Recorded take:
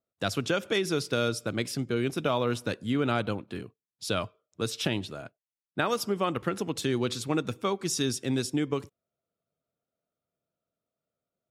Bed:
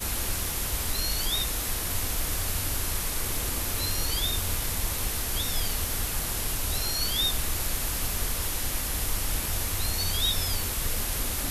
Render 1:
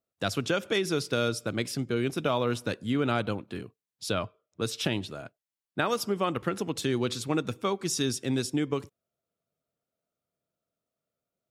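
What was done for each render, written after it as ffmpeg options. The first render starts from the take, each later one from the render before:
ffmpeg -i in.wav -filter_complex "[0:a]asplit=3[link_01][link_02][link_03];[link_01]afade=type=out:start_time=4.11:duration=0.02[link_04];[link_02]aemphasis=mode=reproduction:type=50fm,afade=type=in:start_time=4.11:duration=0.02,afade=type=out:start_time=4.61:duration=0.02[link_05];[link_03]afade=type=in:start_time=4.61:duration=0.02[link_06];[link_04][link_05][link_06]amix=inputs=3:normalize=0" out.wav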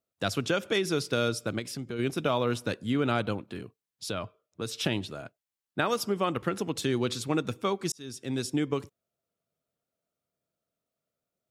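ffmpeg -i in.wav -filter_complex "[0:a]asplit=3[link_01][link_02][link_03];[link_01]afade=type=out:start_time=1.58:duration=0.02[link_04];[link_02]acompressor=threshold=-36dB:ratio=2:attack=3.2:release=140:knee=1:detection=peak,afade=type=in:start_time=1.58:duration=0.02,afade=type=out:start_time=1.98:duration=0.02[link_05];[link_03]afade=type=in:start_time=1.98:duration=0.02[link_06];[link_04][link_05][link_06]amix=inputs=3:normalize=0,asettb=1/sr,asplit=3[link_07][link_08][link_09];[link_07]atrim=end=3.474[link_10];[link_08]atrim=start=3.47:end=4.79,asetpts=PTS-STARTPTS,afade=type=in:duration=0.004:curve=qsin,afade=type=out:start_time=1.316:duration=0.004:curve=qsin,acompressor=threshold=-35dB:ratio=1.5:attack=3.2:release=140:knee=1:detection=peak[link_11];[link_09]atrim=start=4.786[link_12];[link_10][link_11]acrossfade=duration=0.004:curve1=hsin:curve2=qsin[link_13];[link_13][link_12]acrossfade=duration=0.004:curve1=qsin:curve2=hsin,asplit=2[link_14][link_15];[link_14]atrim=end=7.92,asetpts=PTS-STARTPTS,afade=type=out:start_time=7.916:duration=0.004:curve=hsin[link_16];[link_15]atrim=start=7.92,asetpts=PTS-STARTPTS,afade=type=in:duration=0.62[link_17];[link_16][link_17]concat=n=2:v=0:a=1" out.wav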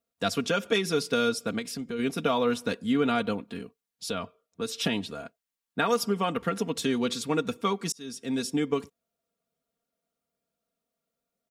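ffmpeg -i in.wav -af "aecho=1:1:4.3:0.69" out.wav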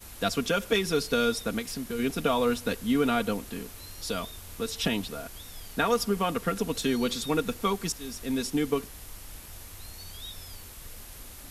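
ffmpeg -i in.wav -i bed.wav -filter_complex "[1:a]volume=-15.5dB[link_01];[0:a][link_01]amix=inputs=2:normalize=0" out.wav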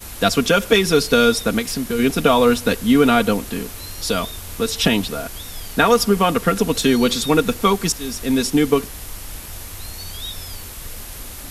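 ffmpeg -i in.wav -af "volume=11dB,alimiter=limit=-1dB:level=0:latency=1" out.wav

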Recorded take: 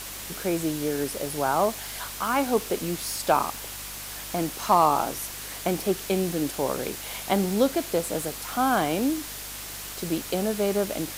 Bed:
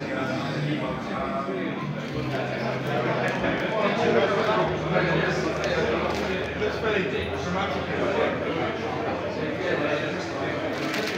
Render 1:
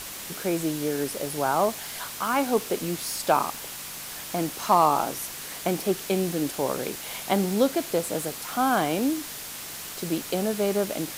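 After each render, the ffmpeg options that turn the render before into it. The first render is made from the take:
ffmpeg -i in.wav -af "bandreject=frequency=50:width_type=h:width=4,bandreject=frequency=100:width_type=h:width=4" out.wav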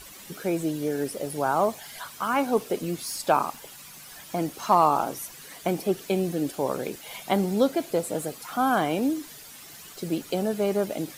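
ffmpeg -i in.wav -af "afftdn=noise_reduction=11:noise_floor=-38" out.wav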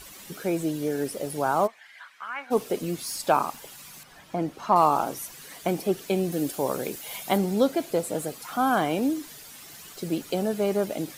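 ffmpeg -i in.wav -filter_complex "[0:a]asplit=3[link_01][link_02][link_03];[link_01]afade=type=out:start_time=1.66:duration=0.02[link_04];[link_02]bandpass=frequency=1900:width_type=q:width=2.6,afade=type=in:start_time=1.66:duration=0.02,afade=type=out:start_time=2.5:duration=0.02[link_05];[link_03]afade=type=in:start_time=2.5:duration=0.02[link_06];[link_04][link_05][link_06]amix=inputs=3:normalize=0,asettb=1/sr,asplit=3[link_07][link_08][link_09];[link_07]atrim=end=4.034[link_10];[link_08]atrim=start=4.03:end=4.76,asetpts=PTS-STARTPTS,afade=type=in:duration=0.004:curve=qsin,afade=type=out:start_time=0.726:duration=0.004:curve=qsin,lowpass=frequency=1900:poles=1[link_11];[link_09]atrim=start=4.756[link_12];[link_10][link_11]acrossfade=duration=0.004:curve1=hsin:curve2=qsin[link_13];[link_13][link_12]acrossfade=duration=0.004:curve1=qsin:curve2=hsin,asettb=1/sr,asplit=3[link_14][link_15][link_16];[link_14]atrim=end=6.324[link_17];[link_15]atrim=start=6.32:end=7.38,asetpts=PTS-STARTPTS,afade=type=in:duration=0.004:curve=qsin,afade=type=out:start_time=1.056:duration=0.004:curve=qsin,highshelf=frequency=7700:gain=8[link_18];[link_16]atrim=start=7.376[link_19];[link_17][link_18]acrossfade=duration=0.004:curve1=hsin:curve2=qsin[link_20];[link_20][link_19]acrossfade=duration=0.004:curve1=qsin:curve2=hsin" out.wav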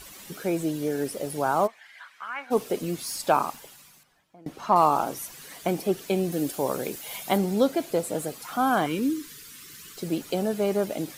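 ffmpeg -i in.wav -filter_complex "[0:a]asettb=1/sr,asplit=3[link_01][link_02][link_03];[link_01]atrim=end=8.864[link_04];[link_02]atrim=start=8.86:end=9.98,asetpts=PTS-STARTPTS,afade=type=in:duration=0.004:curve=qsin,afade=type=out:start_time=1.116:duration=0.004:curve=qsin,asuperstop=centerf=710:order=4:qfactor=1.1[link_05];[link_03]atrim=start=9.976[link_06];[link_04][link_05]acrossfade=duration=0.004:curve1=hsin:curve2=qsin[link_07];[link_07][link_06]acrossfade=duration=0.004:curve1=qsin:curve2=hsin,asplit=2[link_08][link_09];[link_08]atrim=end=4.46,asetpts=PTS-STARTPTS,afade=type=out:start_time=3.49:duration=0.97:curve=qua:silence=0.0630957[link_10];[link_09]atrim=start=4.46,asetpts=PTS-STARTPTS,afade=type=in:duration=0.004:curve=hsin:silence=0.0630957[link_11];[link_10][link_11]concat=n=2:v=0:a=1" out.wav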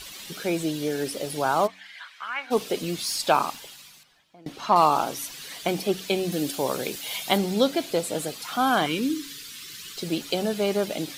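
ffmpeg -i in.wav -af "equalizer=frequency=3700:width=0.83:gain=10,bandreject=frequency=93.93:width_type=h:width=4,bandreject=frequency=187.86:width_type=h:width=4,bandreject=frequency=281.79:width_type=h:width=4" out.wav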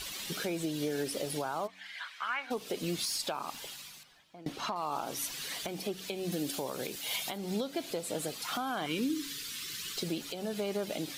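ffmpeg -i in.wav -af "acompressor=threshold=-25dB:ratio=16,alimiter=limit=-23.5dB:level=0:latency=1:release=412" out.wav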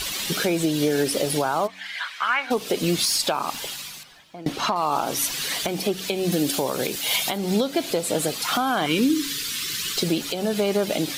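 ffmpeg -i in.wav -af "volume=12dB" out.wav

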